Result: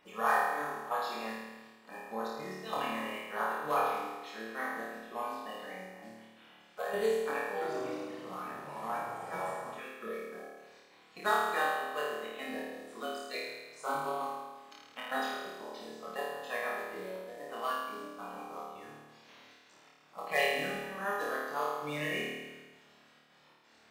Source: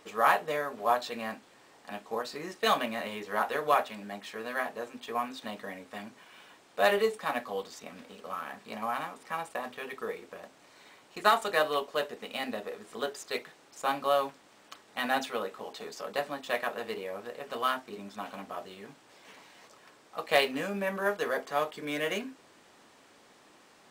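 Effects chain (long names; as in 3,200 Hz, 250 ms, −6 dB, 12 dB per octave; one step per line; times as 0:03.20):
spectral magnitudes quantised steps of 30 dB
gate pattern "xxxx.xx." 132 BPM −12 dB
flutter between parallel walls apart 4.6 metres, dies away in 1.3 s
0:07.47–0:09.80: delay with pitch and tempo change per echo 139 ms, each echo −4 semitones, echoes 2
level −8.5 dB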